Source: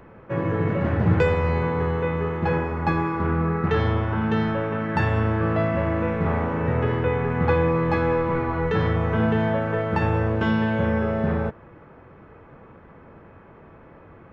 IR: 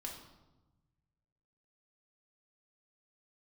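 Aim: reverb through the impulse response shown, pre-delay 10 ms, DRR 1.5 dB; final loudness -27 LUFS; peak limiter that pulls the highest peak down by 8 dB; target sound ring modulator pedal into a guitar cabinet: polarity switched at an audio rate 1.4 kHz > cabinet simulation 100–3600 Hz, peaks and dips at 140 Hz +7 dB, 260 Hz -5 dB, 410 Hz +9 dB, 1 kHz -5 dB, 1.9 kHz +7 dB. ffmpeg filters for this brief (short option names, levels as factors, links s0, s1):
-filter_complex "[0:a]alimiter=limit=0.168:level=0:latency=1,asplit=2[s0][s1];[1:a]atrim=start_sample=2205,adelay=10[s2];[s1][s2]afir=irnorm=-1:irlink=0,volume=1.06[s3];[s0][s3]amix=inputs=2:normalize=0,aeval=exprs='val(0)*sgn(sin(2*PI*1400*n/s))':c=same,highpass=100,equalizer=f=140:t=q:w=4:g=7,equalizer=f=260:t=q:w=4:g=-5,equalizer=f=410:t=q:w=4:g=9,equalizer=f=1000:t=q:w=4:g=-5,equalizer=f=1900:t=q:w=4:g=7,lowpass=f=3600:w=0.5412,lowpass=f=3600:w=1.3066,volume=0.355"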